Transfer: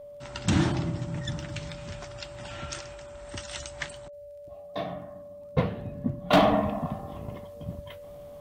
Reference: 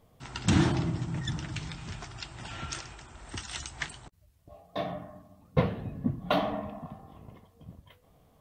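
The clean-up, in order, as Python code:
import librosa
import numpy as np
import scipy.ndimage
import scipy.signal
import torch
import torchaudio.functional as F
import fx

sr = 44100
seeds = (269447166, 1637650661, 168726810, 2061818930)

y = fx.fix_declip(x, sr, threshold_db=-13.0)
y = fx.fix_declick_ar(y, sr, threshold=6.5)
y = fx.notch(y, sr, hz=580.0, q=30.0)
y = fx.fix_level(y, sr, at_s=6.33, step_db=-10.5)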